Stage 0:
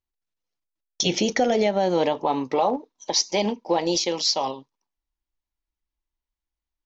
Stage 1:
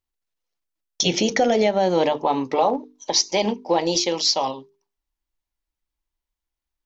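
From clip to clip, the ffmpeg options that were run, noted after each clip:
-af "bandreject=f=50:t=h:w=6,bandreject=f=100:t=h:w=6,bandreject=f=150:t=h:w=6,bandreject=f=200:t=h:w=6,bandreject=f=250:t=h:w=6,bandreject=f=300:t=h:w=6,bandreject=f=350:t=h:w=6,bandreject=f=400:t=h:w=6,bandreject=f=450:t=h:w=6,volume=2.5dB"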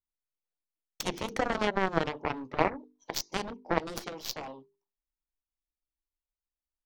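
-af "aeval=exprs='0.473*(cos(1*acos(clip(val(0)/0.473,-1,1)))-cos(1*PI/2))+0.188*(cos(3*acos(clip(val(0)/0.473,-1,1)))-cos(3*PI/2))+0.00668*(cos(4*acos(clip(val(0)/0.473,-1,1)))-cos(4*PI/2))':c=same,highshelf=f=2.1k:g=-12,volume=3dB"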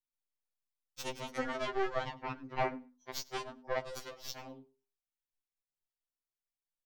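-af "aecho=1:1:100|200:0.0708|0.0113,afftfilt=real='re*2.45*eq(mod(b,6),0)':imag='im*2.45*eq(mod(b,6),0)':win_size=2048:overlap=0.75,volume=-4dB"

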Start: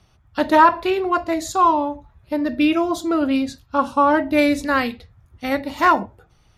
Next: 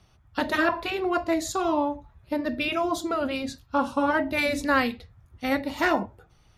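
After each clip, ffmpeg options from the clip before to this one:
-af "afftfilt=real='re*lt(hypot(re,im),1.12)':imag='im*lt(hypot(re,im),1.12)':win_size=1024:overlap=0.75,volume=-2.5dB"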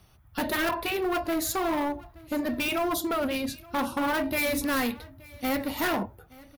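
-af "asoftclip=type=hard:threshold=-25dB,aexciter=amount=5.9:drive=3.5:freq=10k,aecho=1:1:874:0.0708,volume=1dB"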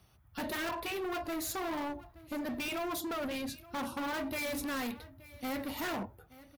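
-af "highpass=41,asoftclip=type=hard:threshold=-28.5dB,volume=-5.5dB"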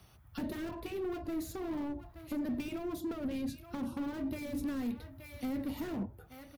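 -filter_complex "[0:a]acrossover=split=390[a][b];[b]acompressor=threshold=-53dB:ratio=6[c];[a][c]amix=inputs=2:normalize=0,volume=4.5dB"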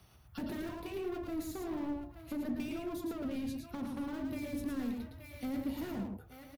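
-af "aecho=1:1:111:0.596,volume=-2dB"

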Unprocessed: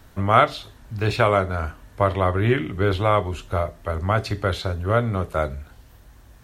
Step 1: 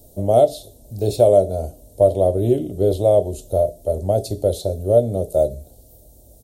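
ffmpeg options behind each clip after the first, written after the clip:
-af "firequalizer=gain_entry='entry(160,0);entry(610,11);entry(1100,-27);entry(1800,-30);entry(3700,-3);entry(9200,13)':delay=0.05:min_phase=1,volume=-1dB"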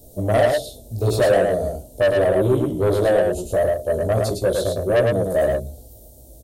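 -filter_complex "[0:a]flanger=delay=15:depth=2.8:speed=1.6,asoftclip=type=tanh:threshold=-18dB,asplit=2[a][b];[b]aecho=0:1:108:0.668[c];[a][c]amix=inputs=2:normalize=0,volume=5dB"

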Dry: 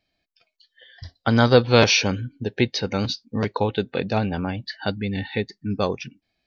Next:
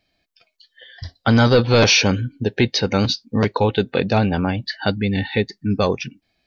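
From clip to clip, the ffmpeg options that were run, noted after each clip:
-af "apsyclip=14dB,volume=-8dB"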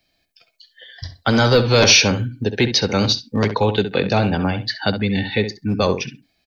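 -filter_complex "[0:a]asplit=2[a][b];[b]adelay=66,lowpass=f=2.7k:p=1,volume=-9.5dB,asplit=2[c][d];[d]adelay=66,lowpass=f=2.7k:p=1,volume=0.16[e];[a][c][e]amix=inputs=3:normalize=0,acrossover=split=320|380|3200[f][g][h][i];[f]volume=16dB,asoftclip=hard,volume=-16dB[j];[j][g][h][i]amix=inputs=4:normalize=0,highshelf=f=5.7k:g=10"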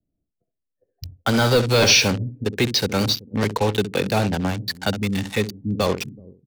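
-filter_complex "[0:a]acrossover=split=430[a][b];[a]aecho=1:1:379:0.126[c];[b]acrusher=bits=3:mix=0:aa=0.5[d];[c][d]amix=inputs=2:normalize=0,volume=-3dB"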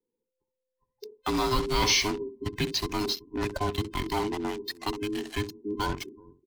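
-af "afftfilt=real='real(if(between(b,1,1008),(2*floor((b-1)/24)+1)*24-b,b),0)':imag='imag(if(between(b,1,1008),(2*floor((b-1)/24)+1)*24-b,b),0)*if(between(b,1,1008),-1,1)':win_size=2048:overlap=0.75,volume=-8.5dB"

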